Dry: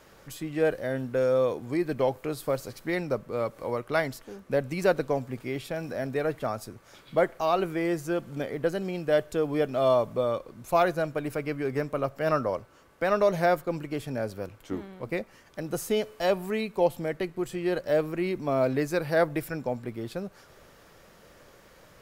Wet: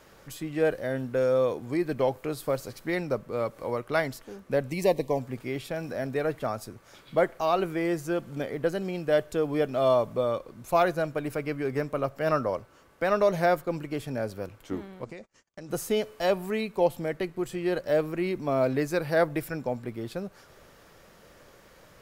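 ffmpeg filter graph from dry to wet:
-filter_complex "[0:a]asettb=1/sr,asplit=3[a][b][c];[a]atrim=end=4.714[d];[b]atrim=start=4.71:end=5.19,asetpts=PTS-STARTPTS,afade=t=in:d=0.004:c=qsin,afade=t=out:st=0.476:d=0.004:c=qsin,asuperstop=centerf=1400:order=8:qfactor=2.2,highshelf=f=9.9k:g=6.5[e];[c]atrim=start=5.186[f];[d][e]acrossfade=d=0.004:c1=hsin:c2=qsin[g];[g][f]acrossfade=d=0.004:c1=qsin:c2=hsin,asettb=1/sr,asplit=3[h][i][j];[h]atrim=end=15.044[k];[i]atrim=start=15.04:end=15.7,asetpts=PTS-STARTPTS,afade=t=in:d=0.004:c=qsin,afade=t=out:st=0.656:d=0.004:c=qsin,acompressor=threshold=-38dB:ratio=8:attack=3.2:release=140:knee=1:detection=peak,lowpass=f=7k:t=q:w=3.1,agate=range=-37dB:threshold=-52dB:ratio=16:release=100:detection=peak[l];[j]atrim=start=15.696[m];[k][l]acrossfade=d=0.004:c1=hsin:c2=qsin[n];[n][m]acrossfade=d=0.004:c1=qsin:c2=hsin"

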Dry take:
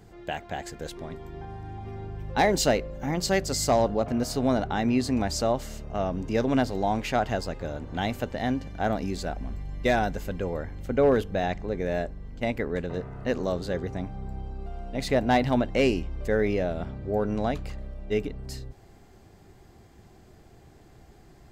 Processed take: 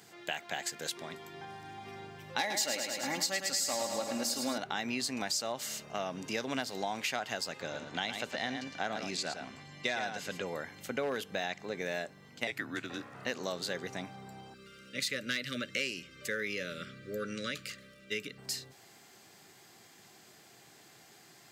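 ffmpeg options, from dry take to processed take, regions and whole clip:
-filter_complex "[0:a]asettb=1/sr,asplit=3[a][b][c];[a]atrim=end=2.394[d];[b]atrim=start=2.39:end=4.58,asetpts=PTS-STARTPTS,afade=t=in:d=0.004:c=qsin,afade=t=out:st=2.186:d=0.004:c=qsin,aecho=1:1:3.6:0.54,atrim=end_sample=96579,aecho=1:1:106|212|318|424|530|636|742|848:0.447|0.264|0.155|0.0917|0.0541|0.0319|0.0188|0.0111,atrim=end_sample=96579[e];[c]atrim=start=4.576[f];[d][e]acrossfade=d=0.004:c1=hsin:c2=qsin[g];[g][f]acrossfade=d=0.004:c1=qsin:c2=hsin,asettb=1/sr,asplit=3[h][i][j];[h]atrim=end=7.614[k];[i]atrim=start=7.61:end=10.46,asetpts=PTS-STARTPTS,afade=t=in:d=0.004:c=qsin,afade=t=out:st=2.846:d=0.004:c=qsin,lowpass=7.1k,aecho=1:1:110:0.398,atrim=end_sample=125685[l];[j]atrim=start=10.456[m];[k][l]acrossfade=d=0.004:c1=hsin:c2=qsin[n];[n][m]acrossfade=d=0.004:c1=qsin:c2=hsin,asettb=1/sr,asplit=3[o][p][q];[o]atrim=end=12.474[r];[p]atrim=start=12.47:end=13.15,asetpts=PTS-STARTPTS,afade=t=in:d=0.004:c=qsin,afade=t=out:st=0.676:d=0.004:c=qsin,bandreject=f=1.1k:w=17,afreqshift=-160[s];[q]atrim=start=13.146[t];[r][s]acrossfade=d=0.004:c1=hsin:c2=qsin[u];[u][t]acrossfade=d=0.004:c1=qsin:c2=hsin,asettb=1/sr,asplit=3[v][w][x];[v]atrim=end=14.544[y];[w]atrim=start=14.54:end=18.38,asetpts=PTS-STARTPTS,afade=t=in:d=0.004:c=qsin,afade=t=out:st=3.836:d=0.004:c=qsin,asuperstop=centerf=830:order=20:qfactor=1.5,equalizer=f=380:t=o:w=1.8:g=-4[z];[x]atrim=start=18.376[aa];[y][z]acrossfade=d=0.004:c1=hsin:c2=qsin[ab];[ab][aa]acrossfade=d=0.004:c1=qsin:c2=hsin,tiltshelf=f=1.1k:g=-9.5,acompressor=threshold=-32dB:ratio=4,highpass=f=130:w=0.5412,highpass=f=130:w=1.3066"

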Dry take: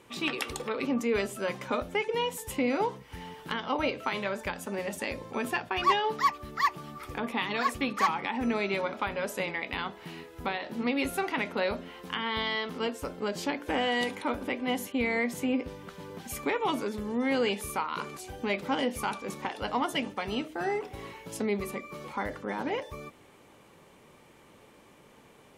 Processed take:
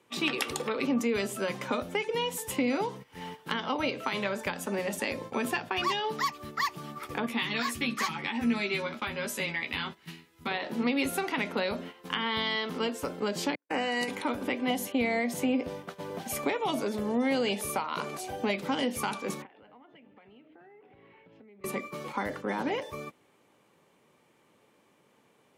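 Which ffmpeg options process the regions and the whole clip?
-filter_complex "[0:a]asettb=1/sr,asplit=3[a][b][c];[a]atrim=end=7.264[d];[b]atrim=start=7.26:end=10.51,asetpts=PTS-STARTPTS,afade=t=in:d=0.004:c=qsin,afade=t=out:st=3.246:d=0.004:c=qsin,equalizer=f=670:t=o:w=2.4:g=-10.5,asplit=2[e][f];[f]adelay=13,volume=-3dB[g];[e][g]amix=inputs=2:normalize=0,atrim=end_sample=143325[h];[c]atrim=start=10.506[i];[d][h]acrossfade=d=0.004:c1=hsin:c2=qsin[j];[j][i]acrossfade=d=0.004:c1=qsin:c2=hsin,asettb=1/sr,asplit=3[k][l][m];[k]atrim=end=13.554[n];[l]atrim=start=13.55:end=14.08,asetpts=PTS-STARTPTS,afade=t=in:d=0.004:c=qsin,afade=t=out:st=0.526:d=0.004:c=qsin,agate=range=-49dB:threshold=-30dB:ratio=16:release=100:detection=peak,asuperstop=centerf=3400:order=4:qfactor=3.3,lowshelf=f=160:g=-8[o];[m]atrim=start=14.076[p];[n][o]acrossfade=d=0.004:c1=hsin:c2=qsin[q];[q][p]acrossfade=d=0.004:c1=qsin:c2=hsin,asettb=1/sr,asplit=3[r][s][t];[r]atrim=end=14.704[u];[s]atrim=start=14.7:end=18.51,asetpts=PTS-STARTPTS,afade=t=in:d=0.004:c=qsin,afade=t=out:st=3.806:d=0.004:c=qsin,equalizer=f=660:t=o:w=0.46:g=10,bandreject=f=7.3k:w=29[v];[t]atrim=start=18.506[w];[u][v]acrossfade=d=0.004:c1=hsin:c2=qsin[x];[x][w]acrossfade=d=0.004:c1=qsin:c2=hsin,asettb=1/sr,asplit=3[y][z][aa];[y]atrim=end=19.424[ab];[z]atrim=start=19.42:end=21.64,asetpts=PTS-STARTPTS,afade=t=in:d=0.004:c=qsin,afade=t=out:st=2.216:d=0.004:c=qsin,lowpass=f=2.8k:w=0.5412,lowpass=f=2.8k:w=1.3066,equalizer=f=1.1k:t=o:w=0.81:g=-5,acompressor=threshold=-43dB:ratio=12:attack=3.2:release=140:knee=1:detection=peak[ac];[aa]atrim=start=21.636[ad];[ab][ac]acrossfade=d=0.004:c1=hsin:c2=qsin[ae];[ae][ad]acrossfade=d=0.004:c1=qsin:c2=hsin,highpass=120,agate=range=-12dB:threshold=-43dB:ratio=16:detection=peak,acrossover=split=240|3000[af][ag][ah];[ag]acompressor=threshold=-32dB:ratio=6[ai];[af][ai][ah]amix=inputs=3:normalize=0,volume=3.5dB"

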